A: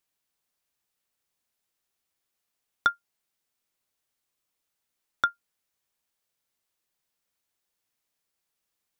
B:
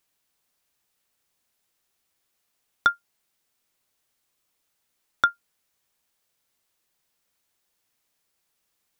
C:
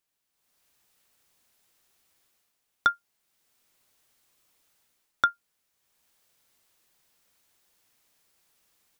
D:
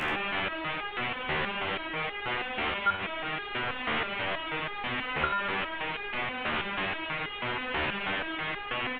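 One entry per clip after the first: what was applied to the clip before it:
limiter -12.5 dBFS, peak gain reduction 4 dB; gain +6.5 dB
AGC gain up to 13.5 dB; gain -7.5 dB
delta modulation 16 kbps, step -19.5 dBFS; on a send: echo 84 ms -6.5 dB; on the sum: stepped resonator 6.2 Hz 76–410 Hz; gain +4.5 dB

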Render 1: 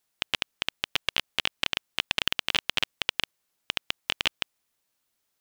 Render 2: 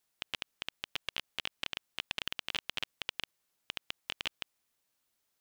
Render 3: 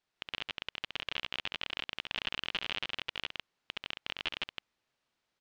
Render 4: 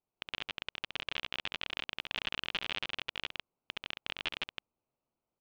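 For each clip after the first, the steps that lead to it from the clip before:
limiter -13.5 dBFS, peak gain reduction 9 dB; gain -2.5 dB
LPF 3900 Hz 12 dB/oct; loudspeakers at several distances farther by 23 m -5 dB, 55 m -1 dB
Wiener smoothing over 25 samples

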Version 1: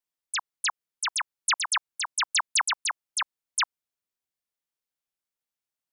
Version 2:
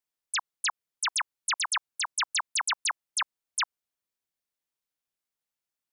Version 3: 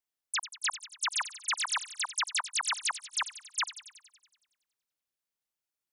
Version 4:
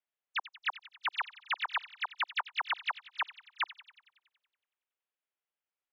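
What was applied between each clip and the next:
limiter -23 dBFS, peak gain reduction 5 dB
thin delay 93 ms, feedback 62%, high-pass 3000 Hz, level -10 dB; gain -2.5 dB
mistuned SSB -51 Hz 420–3300 Hz

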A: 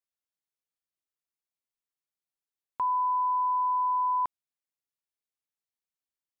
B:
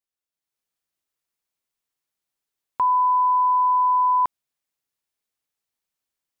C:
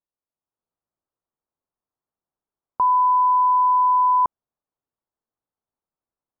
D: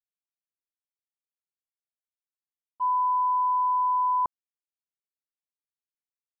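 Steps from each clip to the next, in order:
AGC gain up to 8 dB
LPF 1200 Hz 24 dB/oct; gain +2.5 dB
expander -10 dBFS; gain +2.5 dB

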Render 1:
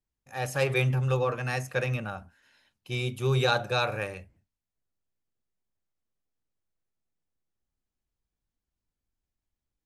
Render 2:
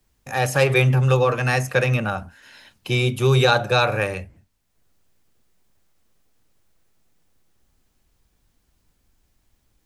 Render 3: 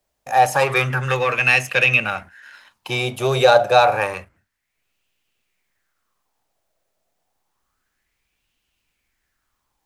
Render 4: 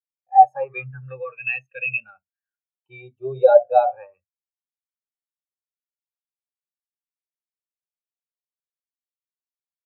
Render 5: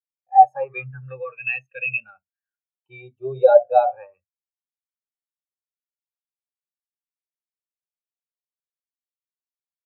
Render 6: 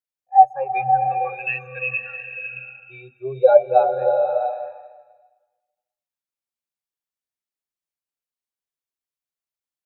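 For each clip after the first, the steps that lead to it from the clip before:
three-band squash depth 40%; gain +9 dB
sample leveller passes 1; low shelf 390 Hz -9 dB; LFO bell 0.29 Hz 610–2800 Hz +14 dB; gain -3 dB
spectral expander 2.5:1
nothing audible
bloom reverb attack 0.65 s, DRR 5 dB

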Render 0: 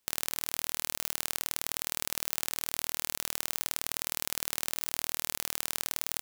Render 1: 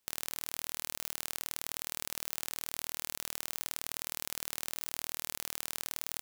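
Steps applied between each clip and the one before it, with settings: limiter -6 dBFS, peak gain reduction 3.5 dB; gain -2 dB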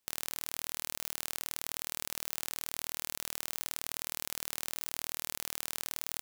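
sample leveller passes 1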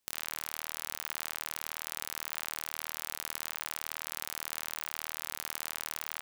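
band-limited delay 64 ms, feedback 61%, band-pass 1600 Hz, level -8 dB

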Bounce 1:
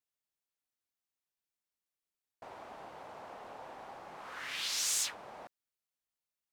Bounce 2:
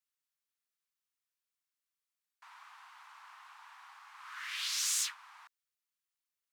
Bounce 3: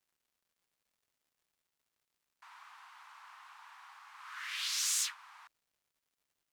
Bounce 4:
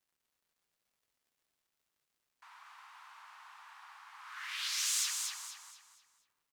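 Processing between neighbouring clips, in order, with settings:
steep high-pass 1000 Hz 48 dB/oct
crackle 280/s -68 dBFS
feedback echo 0.237 s, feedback 36%, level -4.5 dB; gain -1 dB

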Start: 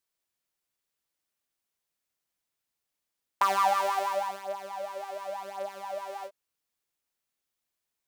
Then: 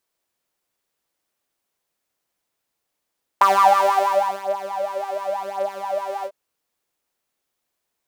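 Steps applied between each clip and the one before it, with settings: bell 540 Hz +6 dB 2.7 oct; gain +5.5 dB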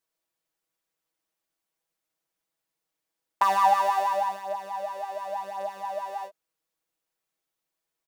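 comb 6.2 ms, depth 73%; gain -8.5 dB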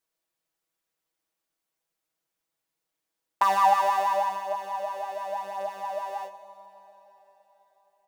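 plate-style reverb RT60 4.6 s, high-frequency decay 0.9×, DRR 12 dB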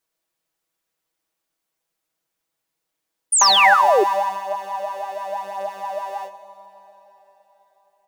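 painted sound fall, 3.32–4.04, 360–9800 Hz -20 dBFS; gain +4.5 dB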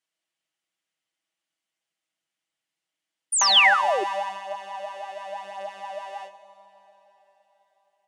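speaker cabinet 150–9800 Hz, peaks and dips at 440 Hz -10 dB, 1000 Hz -4 dB, 2000 Hz +5 dB, 3000 Hz +8 dB; gain -5.5 dB

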